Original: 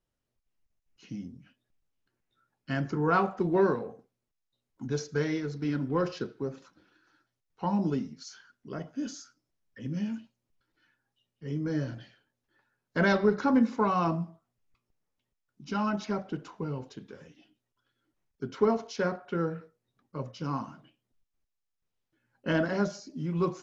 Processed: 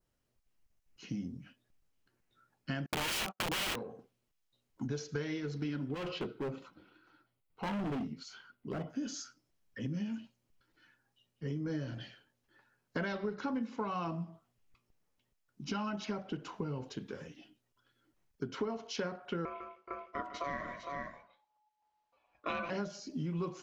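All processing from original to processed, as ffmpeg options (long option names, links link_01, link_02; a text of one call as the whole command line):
ffmpeg -i in.wav -filter_complex "[0:a]asettb=1/sr,asplit=3[link_01][link_02][link_03];[link_01]atrim=end=2.864[link_04];[link_02]atrim=start=2.86:end=3.83,asetpts=PTS-STARTPTS,afade=type=in:duration=0.004:curve=qsin,afade=type=out:start_time=0.966:duration=0.004:curve=qsin,agate=range=-47dB:threshold=-37dB:ratio=16:release=100:detection=peak,acontrast=23,aeval=exprs='(mod(10.6*val(0)+1,2)-1)/10.6':channel_layout=same[link_05];[link_03]atrim=start=3.826[link_06];[link_04][link_05]acrossfade=duration=0.004:curve1=hsin:curve2=qsin[link_07];[link_07][link_06]acrossfade=duration=0.004:curve1=qsin:curve2=hsin,asettb=1/sr,asplit=3[link_08][link_09][link_10];[link_08]atrim=end=5.944[link_11];[link_09]atrim=start=5.94:end=8.9,asetpts=PTS-STARTPTS,afade=type=in:duration=0.004:curve=qsin,afade=type=out:start_time=2.956:duration=0.004:curve=qsin,equalizer=frequency=5900:width_type=o:width=0.77:gain=-13.5,bandreject=frequency=1700:width=5.4,asoftclip=type=hard:threshold=-34.5dB[link_12];[link_10]atrim=start=8.896[link_13];[link_11][link_12]acrossfade=duration=0.004:curve1=hsin:curve2=qsin[link_14];[link_14][link_13]acrossfade=duration=0.004:curve1=qsin:curve2=hsin,asettb=1/sr,asplit=3[link_15][link_16][link_17];[link_15]atrim=end=19.454[link_18];[link_16]atrim=start=19.45:end=22.7,asetpts=PTS-STARTPTS,afade=type=in:duration=0.004:curve=qsin,afade=type=out:start_time=3.246:duration=0.004:curve=qsin,lowpass=5100,aeval=exprs='val(0)*sin(2*PI*850*n/s)':channel_layout=same,aecho=1:1:151|424|455:0.224|0.1|0.355,atrim=end_sample=143325[link_19];[link_17]atrim=start=22.696[link_20];[link_18][link_19]acrossfade=duration=0.004:curve1=hsin:curve2=qsin[link_21];[link_21][link_20]acrossfade=duration=0.004:curve1=qsin:curve2=hsin,bandreject=frequency=3600:width=30,adynamicequalizer=threshold=0.00178:dfrequency=3000:dqfactor=2:tfrequency=3000:tqfactor=2:attack=5:release=100:ratio=0.375:range=3.5:mode=boostabove:tftype=bell,acompressor=threshold=-38dB:ratio=6,volume=3.5dB" out.wav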